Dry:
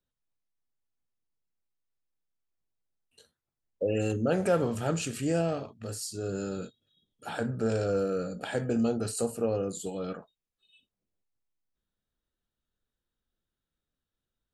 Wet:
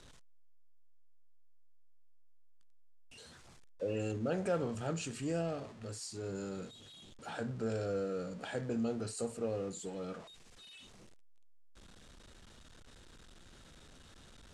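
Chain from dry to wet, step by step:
converter with a step at zero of −40.5 dBFS
low-pass filter 8,800 Hz 24 dB per octave
level −8.5 dB

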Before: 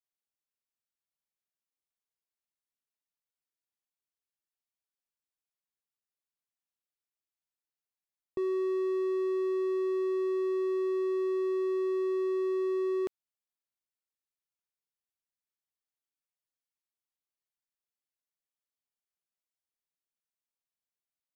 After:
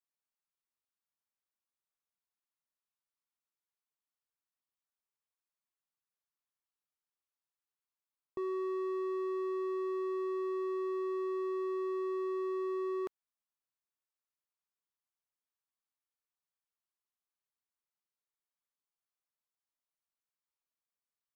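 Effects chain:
parametric band 1,100 Hz +8.5 dB 1.1 octaves
level −6.5 dB

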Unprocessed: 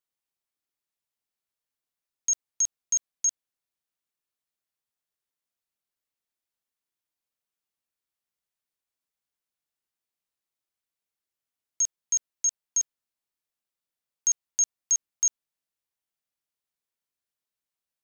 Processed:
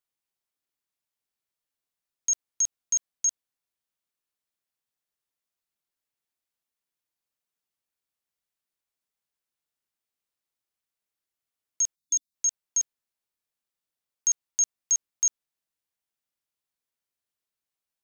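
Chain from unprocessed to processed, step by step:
time-frequency box erased 0:11.95–0:12.35, 290–3,500 Hz

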